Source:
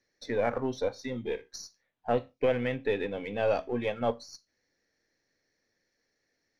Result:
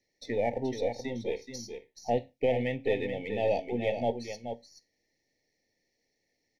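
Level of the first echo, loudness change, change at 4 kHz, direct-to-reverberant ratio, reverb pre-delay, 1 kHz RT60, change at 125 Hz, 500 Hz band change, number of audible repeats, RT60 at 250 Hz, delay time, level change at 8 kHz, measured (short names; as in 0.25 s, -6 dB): -8.0 dB, -1.0 dB, 0.0 dB, none, none, none, +0.5 dB, 0.0 dB, 1, none, 0.428 s, n/a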